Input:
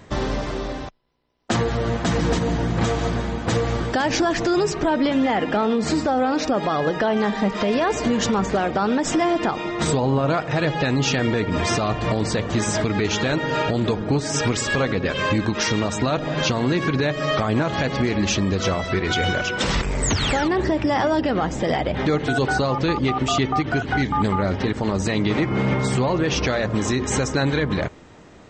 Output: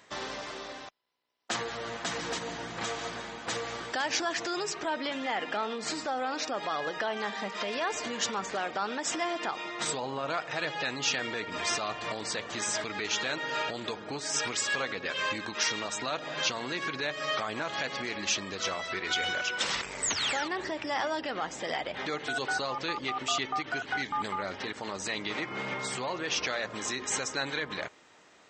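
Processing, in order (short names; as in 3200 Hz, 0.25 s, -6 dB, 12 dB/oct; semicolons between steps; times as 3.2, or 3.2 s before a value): HPF 1400 Hz 6 dB/oct; gain -4 dB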